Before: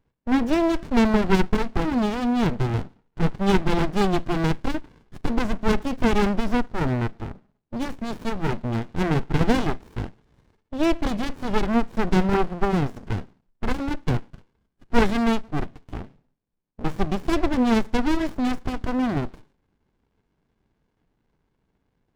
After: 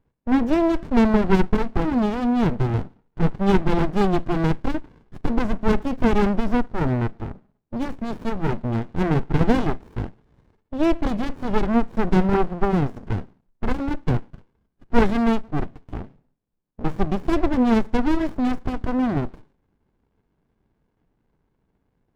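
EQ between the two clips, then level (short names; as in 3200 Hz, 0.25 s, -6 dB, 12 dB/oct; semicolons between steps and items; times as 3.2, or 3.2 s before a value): high shelf 2300 Hz -9 dB; +2.0 dB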